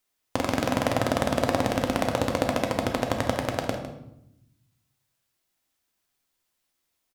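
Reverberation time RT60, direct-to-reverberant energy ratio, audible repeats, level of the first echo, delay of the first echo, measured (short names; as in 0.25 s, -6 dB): 0.80 s, 2.5 dB, 1, -12.0 dB, 0.155 s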